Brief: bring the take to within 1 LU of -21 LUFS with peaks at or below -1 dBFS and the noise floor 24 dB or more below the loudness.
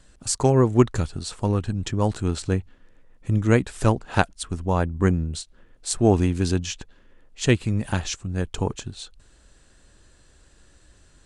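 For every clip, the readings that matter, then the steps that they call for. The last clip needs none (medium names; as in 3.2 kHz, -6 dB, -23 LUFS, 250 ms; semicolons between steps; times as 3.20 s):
loudness -23.5 LUFS; peak level -2.0 dBFS; loudness target -21.0 LUFS
-> trim +2.5 dB; peak limiter -1 dBFS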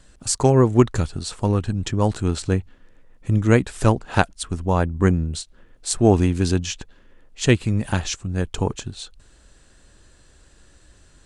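loudness -21.0 LUFS; peak level -1.0 dBFS; noise floor -53 dBFS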